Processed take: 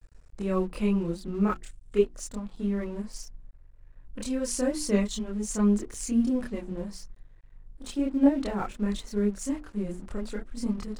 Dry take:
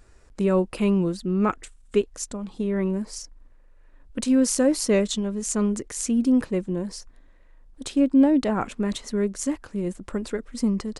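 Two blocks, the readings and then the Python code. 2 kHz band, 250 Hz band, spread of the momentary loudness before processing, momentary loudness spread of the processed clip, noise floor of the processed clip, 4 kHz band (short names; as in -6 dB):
-5.5 dB, -5.0 dB, 12 LU, 13 LU, -53 dBFS, -6.5 dB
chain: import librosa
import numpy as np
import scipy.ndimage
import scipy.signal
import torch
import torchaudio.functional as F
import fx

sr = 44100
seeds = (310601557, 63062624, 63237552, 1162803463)

y = fx.chorus_voices(x, sr, voices=4, hz=0.65, base_ms=27, depth_ms=3.0, mix_pct=55)
y = fx.low_shelf(y, sr, hz=75.0, db=10.5)
y = fx.hum_notches(y, sr, base_hz=60, count=6)
y = np.sign(y) * np.maximum(np.abs(y) - 10.0 ** (-49.0 / 20.0), 0.0)
y = y * 10.0 ** (-2.5 / 20.0)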